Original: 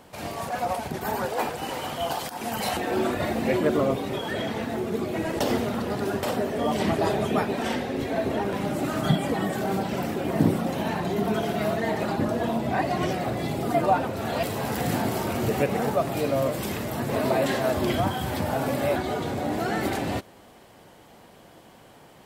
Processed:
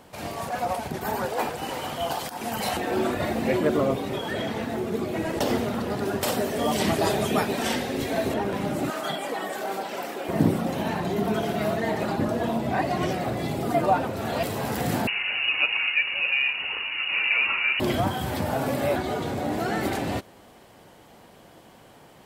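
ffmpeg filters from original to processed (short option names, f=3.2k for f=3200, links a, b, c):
-filter_complex "[0:a]asettb=1/sr,asplit=3[a][b][c];[a]atrim=end=6.214[d];[b]atrim=start=6.21:end=8.34,asetpts=PTS-STARTPTS,afade=t=in:d=0.004:c=qsin,afade=t=out:st=2.126:d=0.004:c=qsin,highshelf=f=3.4k:g=10[e];[c]atrim=start=8.336[f];[d][e]acrossfade=d=0.004:c1=hsin:c2=qsin[g];[g][f]acrossfade=d=0.004:c1=qsin:c2=hsin,asettb=1/sr,asplit=3[h][i][j];[h]atrim=end=8.904[k];[i]atrim=start=8.9:end=10.29,asetpts=PTS-STARTPTS,afade=t=in:d=0.004:c=qsin,afade=t=out:st=1.386:d=0.004:c=qsin,highpass=470[l];[j]atrim=start=10.286[m];[k][l]acrossfade=d=0.004:c1=hsin:c2=qsin[n];[n][m]acrossfade=d=0.004:c1=qsin:c2=hsin,asettb=1/sr,asplit=3[o][p][q];[o]atrim=end=15.074[r];[p]atrim=start=15.07:end=17.8,asetpts=PTS-STARTPTS,afade=t=in:d=0.004:c=qsin,afade=t=out:st=2.726:d=0.004:c=qsin,lowpass=f=2.6k:t=q:w=0.5098,lowpass=f=2.6k:t=q:w=0.6013,lowpass=f=2.6k:t=q:w=0.9,lowpass=f=2.6k:t=q:w=2.563,afreqshift=-3000[s];[q]atrim=start=17.796[t];[r][s]acrossfade=d=0.004:c1=hsin:c2=qsin[u];[u][t]acrossfade=d=0.004:c1=qsin:c2=hsin"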